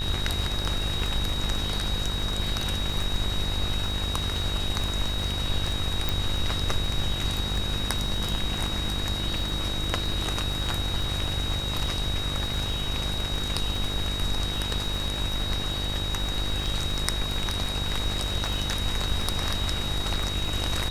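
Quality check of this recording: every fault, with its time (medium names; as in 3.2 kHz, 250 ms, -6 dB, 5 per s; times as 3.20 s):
buzz 50 Hz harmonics 36 -32 dBFS
crackle 33 per s -32 dBFS
whine 3.8 kHz -31 dBFS
6.09 s: pop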